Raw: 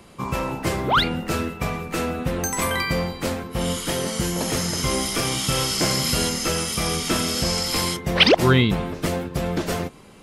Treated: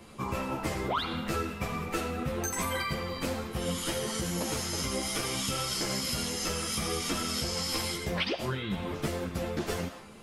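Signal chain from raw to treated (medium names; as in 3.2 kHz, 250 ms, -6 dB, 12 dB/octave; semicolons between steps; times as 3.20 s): on a send at -8 dB: high-pass 610 Hz 24 dB/octave + reverberation RT60 0.70 s, pre-delay 25 ms; on the sum: compression 12:1, threshold -25 dBFS, peak gain reduction 16 dB; three-phase chorus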